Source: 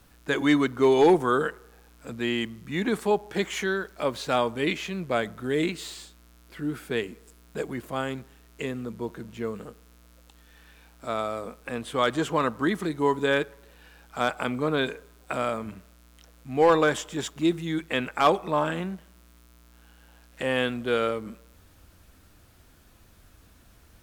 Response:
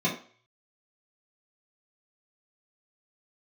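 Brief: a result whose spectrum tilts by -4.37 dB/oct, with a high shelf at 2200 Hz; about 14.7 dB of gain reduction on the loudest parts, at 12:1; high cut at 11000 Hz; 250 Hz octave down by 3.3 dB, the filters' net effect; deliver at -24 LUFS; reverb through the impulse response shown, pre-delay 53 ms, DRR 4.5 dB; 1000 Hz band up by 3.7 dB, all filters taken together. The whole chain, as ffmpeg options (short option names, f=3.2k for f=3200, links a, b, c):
-filter_complex "[0:a]lowpass=11k,equalizer=f=250:t=o:g=-5,equalizer=f=1k:t=o:g=3.5,highshelf=f=2.2k:g=6.5,acompressor=threshold=-27dB:ratio=12,asplit=2[a][b];[1:a]atrim=start_sample=2205,adelay=53[c];[b][c]afir=irnorm=-1:irlink=0,volume=-15.5dB[d];[a][d]amix=inputs=2:normalize=0,volume=7.5dB"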